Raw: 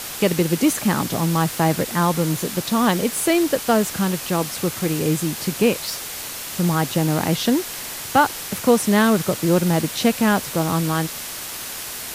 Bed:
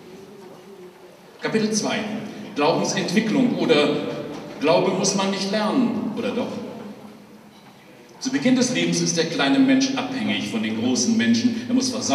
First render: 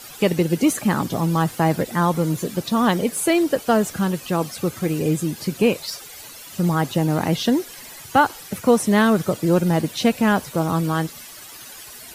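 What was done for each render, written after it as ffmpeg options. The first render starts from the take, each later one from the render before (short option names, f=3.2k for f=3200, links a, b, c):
-af "afftdn=nr=13:nf=-32"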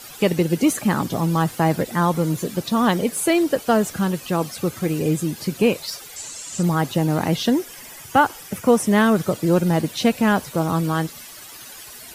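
-filter_complex "[0:a]asettb=1/sr,asplit=3[a][b][c];[a]atrim=end=6.164[d];[b]atrim=start=6.16:end=6.63,asetpts=PTS-STARTPTS,afade=t=in:d=0.004:c=qsin,afade=t=out:st=0.466:d=0.004:c=qsin,lowpass=f=7.5k:t=q:w=5.1[e];[c]atrim=start=6.626[f];[d][e]acrossfade=d=0.004:c1=hsin:c2=qsin[g];[g][f]acrossfade=d=0.004:c1=qsin:c2=hsin,asettb=1/sr,asplit=3[h][i][j];[h]atrim=end=7.524[k];[i]atrim=start=7.52:end=9.16,asetpts=PTS-STARTPTS,afade=t=in:d=0.004:c=qsin,afade=t=out:st=1.636:d=0.004:c=qsin,equalizer=f=4.1k:w=7.8:g=-8.5[l];[j]atrim=start=9.156[m];[k][l]acrossfade=d=0.004:c1=hsin:c2=qsin[n];[n][m]acrossfade=d=0.004:c1=qsin:c2=hsin"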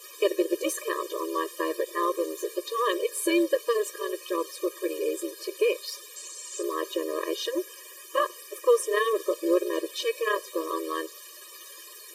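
-af "tremolo=f=240:d=0.621,afftfilt=real='re*eq(mod(floor(b*sr/1024/320),2),1)':imag='im*eq(mod(floor(b*sr/1024/320),2),1)':win_size=1024:overlap=0.75"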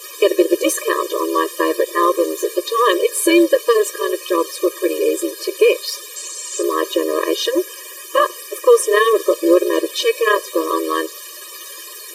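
-af "volume=11.5dB,alimiter=limit=-2dB:level=0:latency=1"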